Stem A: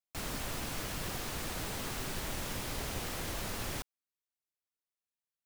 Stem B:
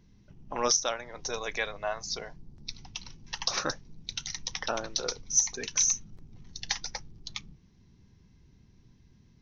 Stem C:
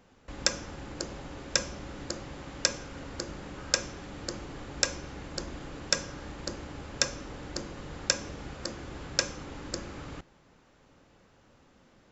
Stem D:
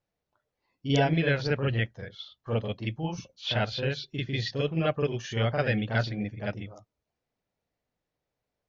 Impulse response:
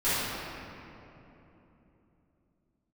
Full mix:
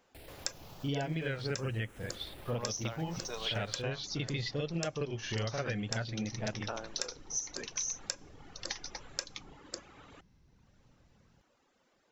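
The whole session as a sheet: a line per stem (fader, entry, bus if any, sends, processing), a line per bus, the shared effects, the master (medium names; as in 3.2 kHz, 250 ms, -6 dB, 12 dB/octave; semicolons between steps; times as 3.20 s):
-4.0 dB, 0.00 s, no send, tilt shelf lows +3 dB; peak limiter -35.5 dBFS, peak gain reduction 11.5 dB; barber-pole phaser +0.46 Hz
-6.5 dB, 2.00 s, no send, none
-6.0 dB, 0.00 s, no send, reverb removal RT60 1.2 s; tone controls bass -12 dB, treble +2 dB
0.0 dB, 0.00 s, no send, vibrato 0.5 Hz 72 cents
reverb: none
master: compression, threshold -32 dBFS, peak gain reduction 12.5 dB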